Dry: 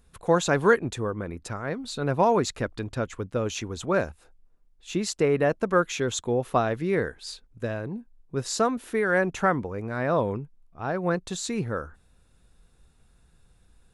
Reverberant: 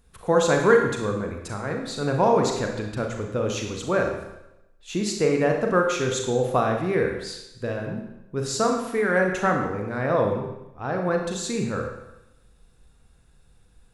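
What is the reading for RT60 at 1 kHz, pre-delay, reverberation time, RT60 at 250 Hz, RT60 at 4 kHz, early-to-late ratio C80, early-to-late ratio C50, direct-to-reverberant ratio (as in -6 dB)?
0.90 s, 36 ms, 0.90 s, 0.90 s, 0.85 s, 7.0 dB, 4.0 dB, 2.0 dB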